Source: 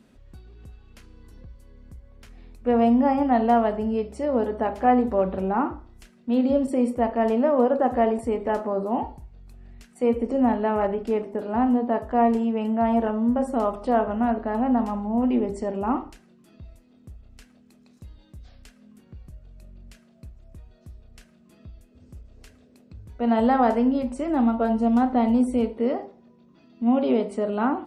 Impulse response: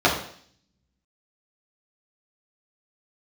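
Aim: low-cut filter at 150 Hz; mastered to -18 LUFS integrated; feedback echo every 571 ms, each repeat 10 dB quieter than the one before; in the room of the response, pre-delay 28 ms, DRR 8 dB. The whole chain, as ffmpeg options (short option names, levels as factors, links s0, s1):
-filter_complex "[0:a]highpass=150,aecho=1:1:571|1142|1713|2284:0.316|0.101|0.0324|0.0104,asplit=2[s0][s1];[1:a]atrim=start_sample=2205,adelay=28[s2];[s1][s2]afir=irnorm=-1:irlink=0,volume=0.0376[s3];[s0][s3]amix=inputs=2:normalize=0,volume=1.68"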